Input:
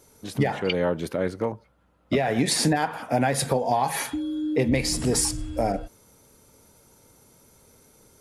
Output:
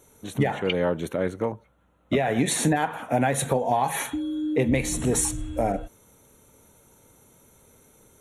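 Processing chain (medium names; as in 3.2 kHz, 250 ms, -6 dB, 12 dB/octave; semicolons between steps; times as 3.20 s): Butterworth band-stop 4.9 kHz, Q 2.9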